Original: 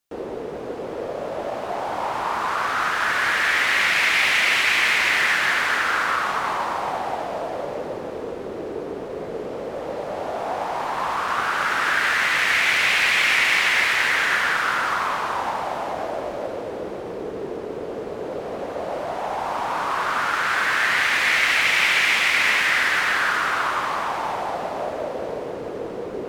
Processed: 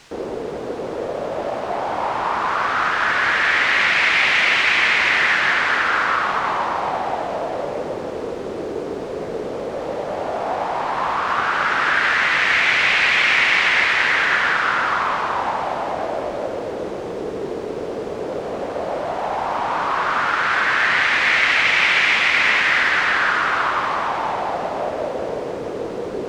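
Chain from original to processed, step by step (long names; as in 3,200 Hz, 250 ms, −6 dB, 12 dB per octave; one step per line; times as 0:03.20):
in parallel at −5 dB: bit-depth reduction 6 bits, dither triangular
on the sum: high-frequency loss of the air 110 metres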